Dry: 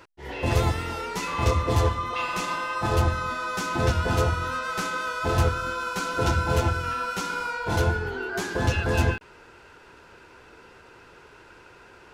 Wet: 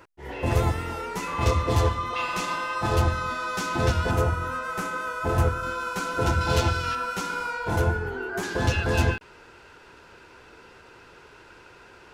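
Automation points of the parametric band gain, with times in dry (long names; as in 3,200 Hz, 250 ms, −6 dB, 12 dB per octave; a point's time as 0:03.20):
parametric band 4,200 Hz 1.4 octaves
−6 dB
from 0:01.41 +0.5 dB
from 0:04.11 −9.5 dB
from 0:05.63 −3.5 dB
from 0:06.41 +7.5 dB
from 0:06.95 −2 dB
from 0:07.70 −8 dB
from 0:08.43 +2 dB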